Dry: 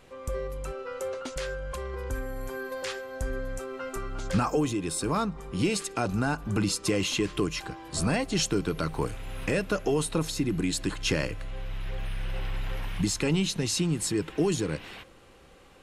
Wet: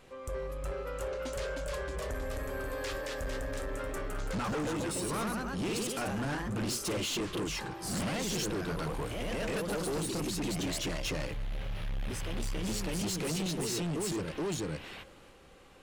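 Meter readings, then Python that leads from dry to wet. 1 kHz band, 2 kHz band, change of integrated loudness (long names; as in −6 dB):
−4.5 dB, −4.0 dB, −5.0 dB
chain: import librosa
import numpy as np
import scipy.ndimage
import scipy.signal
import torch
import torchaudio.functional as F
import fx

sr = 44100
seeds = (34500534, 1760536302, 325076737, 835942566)

y = fx.hum_notches(x, sr, base_hz=60, count=2)
y = fx.echo_pitch(y, sr, ms=381, semitones=1, count=3, db_per_echo=-3.0)
y = 10.0 ** (-28.5 / 20.0) * np.tanh(y / 10.0 ** (-28.5 / 20.0))
y = F.gain(torch.from_numpy(y), -2.0).numpy()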